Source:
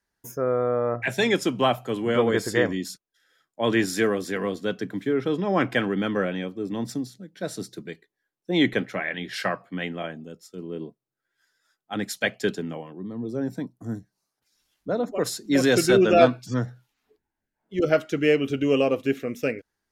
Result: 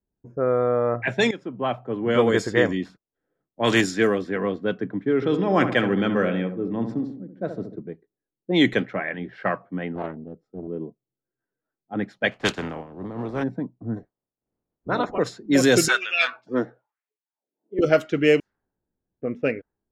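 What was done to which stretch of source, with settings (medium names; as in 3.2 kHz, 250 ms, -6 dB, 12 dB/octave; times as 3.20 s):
1.31–2.18 s: fade in, from -17.5 dB
2.82–3.80 s: spectral contrast reduction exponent 0.69
5.15–7.76 s: filtered feedback delay 71 ms, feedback 55%, low-pass 1.3 kHz, level -7.5 dB
9.95–10.68 s: loudspeaker Doppler distortion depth 0.42 ms
12.31–13.42 s: spectral contrast reduction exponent 0.39
13.96–15.17 s: spectral peaks clipped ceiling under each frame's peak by 22 dB
15.88–17.79 s: LFO high-pass sine 1 Hz 320–2600 Hz
18.40–19.22 s: room tone
whole clip: level-controlled noise filter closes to 410 Hz, open at -16.5 dBFS; dynamic bell 6.9 kHz, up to +5 dB, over -55 dBFS, Q 3.5; trim +2.5 dB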